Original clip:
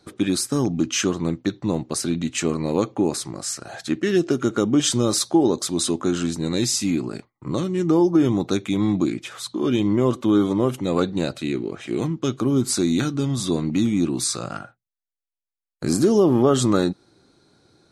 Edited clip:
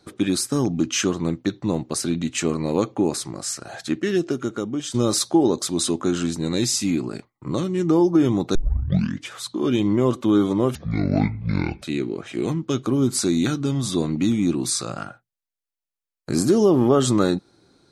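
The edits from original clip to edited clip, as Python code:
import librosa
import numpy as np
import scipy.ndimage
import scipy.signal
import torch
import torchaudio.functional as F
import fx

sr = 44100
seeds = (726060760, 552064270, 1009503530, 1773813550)

y = fx.edit(x, sr, fx.fade_out_to(start_s=3.84, length_s=1.1, floor_db=-12.0),
    fx.tape_start(start_s=8.55, length_s=0.74),
    fx.speed_span(start_s=10.75, length_s=0.61, speed=0.57), tone=tone)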